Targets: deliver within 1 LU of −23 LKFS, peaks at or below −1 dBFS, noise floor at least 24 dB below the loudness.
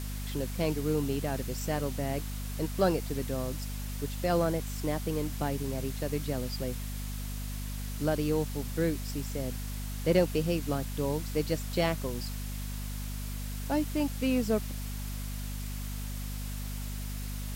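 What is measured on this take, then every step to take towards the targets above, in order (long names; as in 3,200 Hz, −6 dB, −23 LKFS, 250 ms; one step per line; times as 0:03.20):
mains hum 50 Hz; hum harmonics up to 250 Hz; level of the hum −34 dBFS; background noise floor −36 dBFS; target noise floor −57 dBFS; integrated loudness −33.0 LKFS; sample peak −13.0 dBFS; target loudness −23.0 LKFS
→ mains-hum notches 50/100/150/200/250 Hz
broadband denoise 21 dB, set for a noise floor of −36 dBFS
level +10 dB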